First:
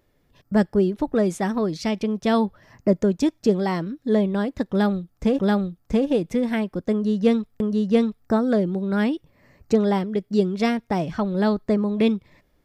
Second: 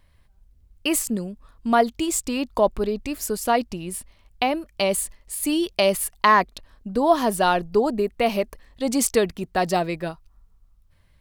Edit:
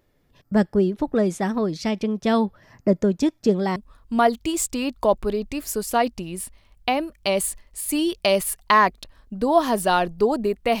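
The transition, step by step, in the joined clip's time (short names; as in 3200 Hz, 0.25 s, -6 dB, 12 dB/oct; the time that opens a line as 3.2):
first
3.76 switch to second from 1.3 s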